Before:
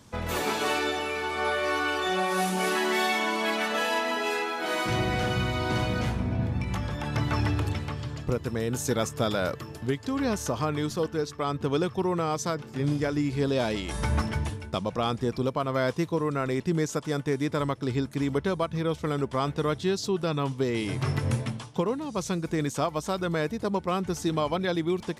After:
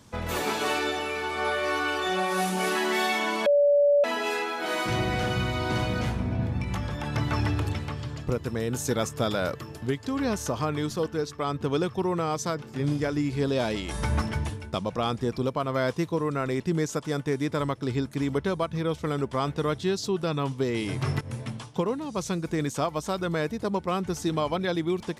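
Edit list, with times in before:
3.46–4.04 bleep 576 Hz -16.5 dBFS
21.21–21.61 fade in, from -17.5 dB

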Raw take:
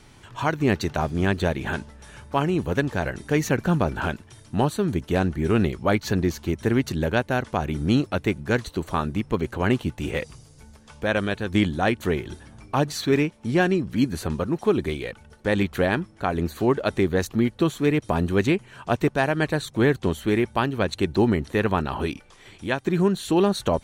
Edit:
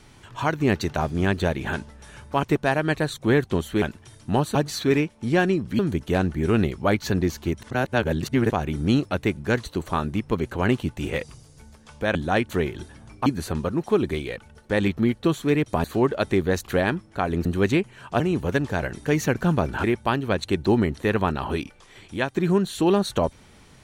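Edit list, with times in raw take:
2.43–4.07 swap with 18.95–20.34
6.64–7.52 reverse
11.16–11.66 cut
12.77–14.01 move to 4.8
15.72–16.5 swap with 17.33–18.2

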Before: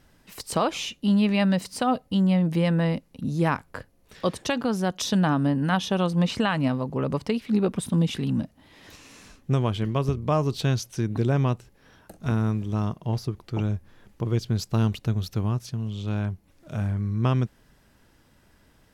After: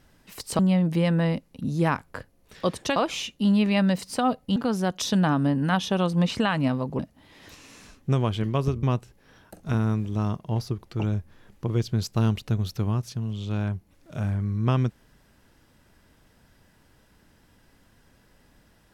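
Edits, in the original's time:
0.59–2.19 move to 4.56
6.99–8.4 cut
10.24–11.4 cut

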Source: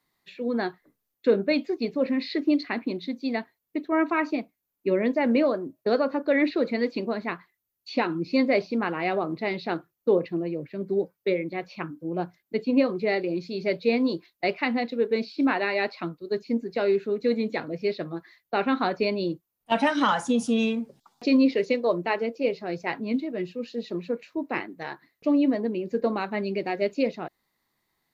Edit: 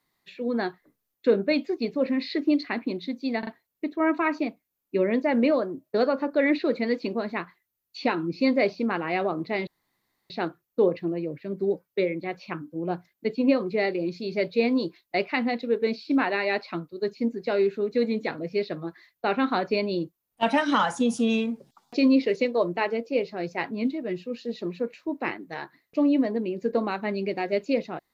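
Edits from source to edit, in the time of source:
3.39 stutter 0.04 s, 3 plays
9.59 insert room tone 0.63 s

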